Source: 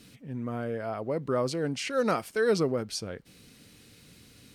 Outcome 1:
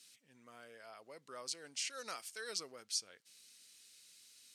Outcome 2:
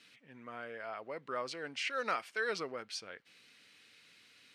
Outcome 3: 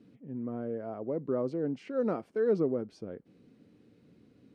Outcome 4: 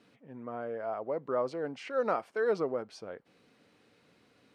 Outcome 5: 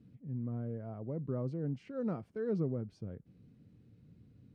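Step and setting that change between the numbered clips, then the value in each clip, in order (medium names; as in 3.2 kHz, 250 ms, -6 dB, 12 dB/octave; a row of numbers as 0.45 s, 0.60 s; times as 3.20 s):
band-pass filter, frequency: 7.2 kHz, 2.2 kHz, 310 Hz, 790 Hz, 120 Hz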